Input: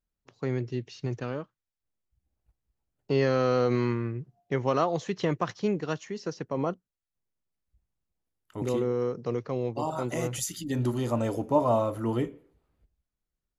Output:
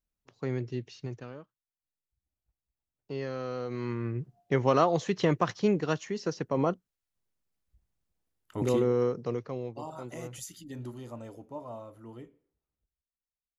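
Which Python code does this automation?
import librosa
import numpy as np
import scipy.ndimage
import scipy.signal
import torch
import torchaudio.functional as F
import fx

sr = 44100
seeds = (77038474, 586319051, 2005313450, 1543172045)

y = fx.gain(x, sr, db=fx.line((0.89, -2.5), (1.34, -11.0), (3.71, -11.0), (4.19, 2.0), (9.03, 2.0), (9.88, -10.0), (10.47, -10.0), (11.61, -18.0)))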